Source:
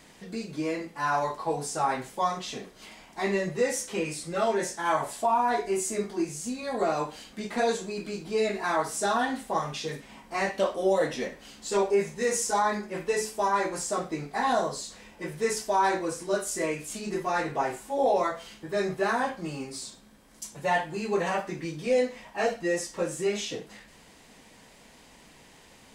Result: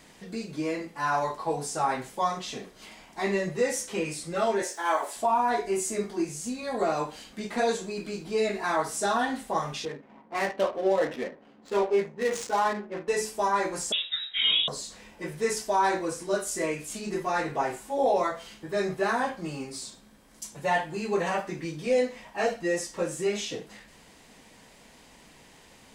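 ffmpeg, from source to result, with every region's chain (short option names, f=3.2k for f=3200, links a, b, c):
-filter_complex "[0:a]asettb=1/sr,asplit=3[a][b][c];[a]atrim=end=4.624[d];[b]atrim=start=4.62:end=5.16,asetpts=PTS-STARTPTS,afade=t=in:d=0.004:c=qsin,afade=t=out:st=0.536:d=0.004:c=qsin,highpass=f=320:w=0.5412,highpass=f=320:w=1.3066,acrusher=bits=8:mix=0:aa=0.5[e];[c]atrim=start=5.156[f];[d][e]acrossfade=d=0.004:c1=hsin:c2=qsin[g];[g][f]acrossfade=d=0.004:c1=qsin:c2=hsin,asettb=1/sr,asplit=3[h][i][j];[h]atrim=end=9.854[k];[i]atrim=start=9.85:end=13.08,asetpts=PTS-STARTPTS,afade=t=in:d=0.004:c=qsin,afade=t=out:st=3.226:d=0.004:c=qsin,highpass=200,adynamicsmooth=sensitivity=6.5:basefreq=790[l];[j]atrim=start=13.076[m];[k][l]acrossfade=d=0.004:c1=hsin:c2=qsin[n];[n][m]acrossfade=d=0.004:c1=qsin:c2=hsin,asettb=1/sr,asplit=3[o][p][q];[o]atrim=end=13.924[r];[p]atrim=start=13.92:end=14.68,asetpts=PTS-STARTPTS,afade=t=in:d=0.004:c=qsin,afade=t=out:st=0.756:d=0.004:c=qsin,asplit=2[s][t];[t]adelay=15,volume=-6dB[u];[s][u]amix=inputs=2:normalize=0,atrim=end_sample=33516,lowpass=f=3.4k:t=q:w=0.5098,lowpass=f=3.4k:t=q:w=0.6013,lowpass=f=3.4k:t=q:w=0.9,lowpass=f=3.4k:t=q:w=2.563,afreqshift=-4000[v];[q]atrim=start=14.676[w];[r][v]acrossfade=d=0.004:c1=hsin:c2=qsin[x];[x][w]acrossfade=d=0.004:c1=qsin:c2=hsin"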